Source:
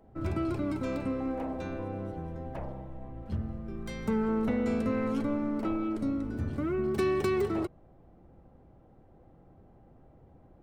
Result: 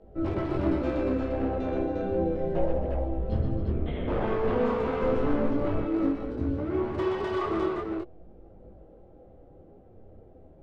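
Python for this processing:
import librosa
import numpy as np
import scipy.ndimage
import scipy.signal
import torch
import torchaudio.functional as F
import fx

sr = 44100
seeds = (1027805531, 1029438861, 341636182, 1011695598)

y = fx.lpc_vocoder(x, sr, seeds[0], excitation='whisper', order=8, at=(3.58, 4.24))
y = fx.graphic_eq(y, sr, hz=(125, 250, 500, 1000, 2000), db=(-7, -4, 5, -10, -7))
y = 10.0 ** (-29.0 / 20.0) * (np.abs((y / 10.0 ** (-29.0 / 20.0) + 3.0) % 4.0 - 2.0) - 1.0)
y = scipy.signal.sosfilt(scipy.signal.butter(2, 2900.0, 'lowpass', fs=sr, output='sos'), y)
y = fx.echo_multitap(y, sr, ms=(51, 125, 200, 273, 353), db=(-9.0, -4.5, -12.5, -9.5, -3.0))
y = fx.rider(y, sr, range_db=10, speed_s=2.0)
y = fx.comb(y, sr, ms=5.6, depth=0.58, at=(2.25, 2.71))
y = fx.low_shelf(y, sr, hz=150.0, db=10.5, at=(5.02, 5.86))
y = fx.detune_double(y, sr, cents=12)
y = y * librosa.db_to_amplitude(8.5)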